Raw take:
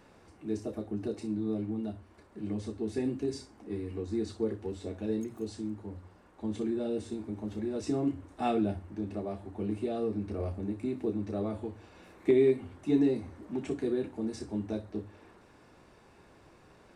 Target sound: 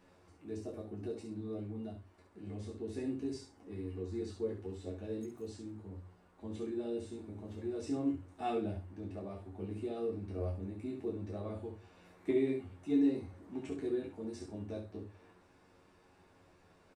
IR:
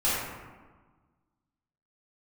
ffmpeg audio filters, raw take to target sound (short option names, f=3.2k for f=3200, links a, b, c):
-af "aecho=1:1:11|22|68:0.596|0.562|0.473,volume=-9dB"